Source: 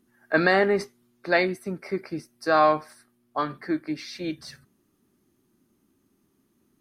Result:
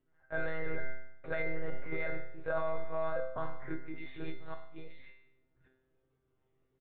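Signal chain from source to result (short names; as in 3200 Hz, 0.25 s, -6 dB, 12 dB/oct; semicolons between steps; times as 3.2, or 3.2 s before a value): reverse delay 0.567 s, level -6 dB; comb 2 ms, depth 79%; de-hum 85.78 Hz, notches 23; monotone LPC vocoder at 8 kHz 160 Hz; high shelf 3100 Hz -11.5 dB; resonator 130 Hz, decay 0.71 s, harmonics all, mix 90%; limiter -29.5 dBFS, peak gain reduction 11 dB; bell 220 Hz -4.5 dB 0.48 oct; gain +6 dB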